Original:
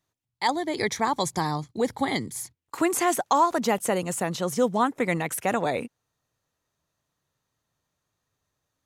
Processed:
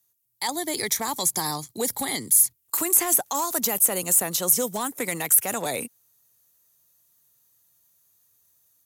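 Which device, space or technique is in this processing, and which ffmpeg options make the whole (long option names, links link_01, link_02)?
FM broadcast chain: -filter_complex "[0:a]highpass=56,dynaudnorm=framelen=210:gausssize=3:maxgain=5.5dB,acrossover=split=240|3200[link_01][link_02][link_03];[link_01]acompressor=threshold=-33dB:ratio=4[link_04];[link_02]acompressor=threshold=-18dB:ratio=4[link_05];[link_03]acompressor=threshold=-31dB:ratio=4[link_06];[link_04][link_05][link_06]amix=inputs=3:normalize=0,aemphasis=mode=production:type=50fm,alimiter=limit=-11.5dB:level=0:latency=1:release=33,asoftclip=type=hard:threshold=-14dB,lowpass=frequency=15000:width=0.5412,lowpass=frequency=15000:width=1.3066,aemphasis=mode=production:type=50fm,volume=-6dB"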